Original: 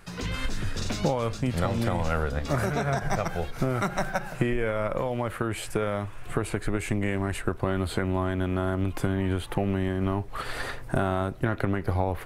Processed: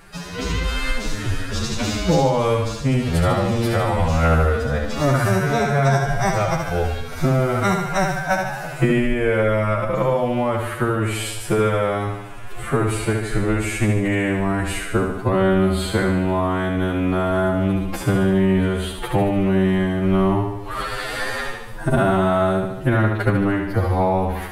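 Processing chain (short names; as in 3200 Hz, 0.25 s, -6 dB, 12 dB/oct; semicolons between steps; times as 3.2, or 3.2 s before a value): flutter echo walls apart 6.3 m, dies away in 0.46 s; time stretch by phase-locked vocoder 2×; gain +7 dB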